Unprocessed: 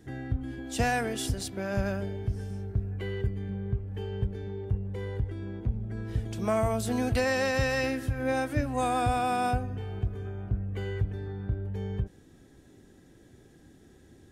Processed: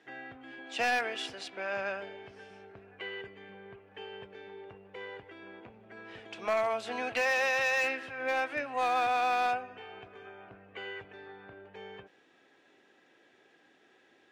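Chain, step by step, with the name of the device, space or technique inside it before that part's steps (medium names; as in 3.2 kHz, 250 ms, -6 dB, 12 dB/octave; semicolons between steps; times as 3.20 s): megaphone (band-pass 690–3200 Hz; peaking EQ 2.6 kHz +6.5 dB 0.47 oct; hard clipper -26 dBFS, distortion -16 dB); trim +2.5 dB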